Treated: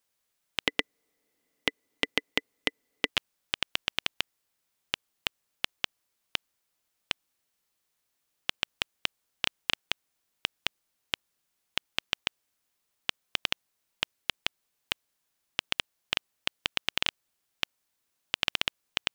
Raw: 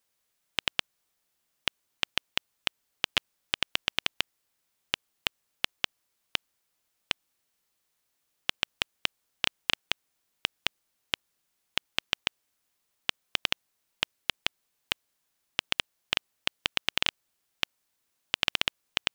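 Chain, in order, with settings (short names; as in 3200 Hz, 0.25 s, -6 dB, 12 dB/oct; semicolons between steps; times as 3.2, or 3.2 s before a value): 0.67–3.09 small resonant body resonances 290/440/2000 Hz, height 16 dB, ringing for 35 ms; gain -1.5 dB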